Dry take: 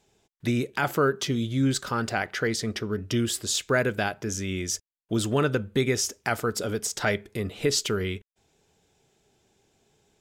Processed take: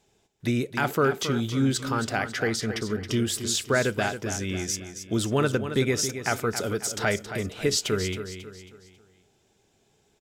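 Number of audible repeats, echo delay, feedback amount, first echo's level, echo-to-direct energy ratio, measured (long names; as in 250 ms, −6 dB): 4, 272 ms, 41%, −10.0 dB, −9.0 dB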